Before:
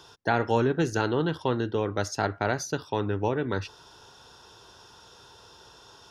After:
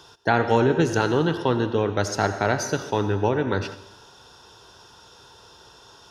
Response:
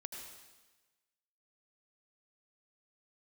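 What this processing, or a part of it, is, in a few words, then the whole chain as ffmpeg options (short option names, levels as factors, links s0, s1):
keyed gated reverb: -filter_complex "[0:a]asplit=3[s0][s1][s2];[1:a]atrim=start_sample=2205[s3];[s1][s3]afir=irnorm=-1:irlink=0[s4];[s2]apad=whole_len=269373[s5];[s4][s5]sidechaingate=range=0.447:threshold=0.00708:ratio=16:detection=peak,volume=1.19[s6];[s0][s6]amix=inputs=2:normalize=0"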